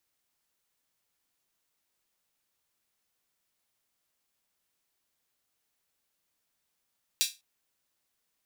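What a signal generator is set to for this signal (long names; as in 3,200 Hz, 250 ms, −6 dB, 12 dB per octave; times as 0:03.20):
open synth hi-hat length 0.20 s, high-pass 3,500 Hz, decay 0.24 s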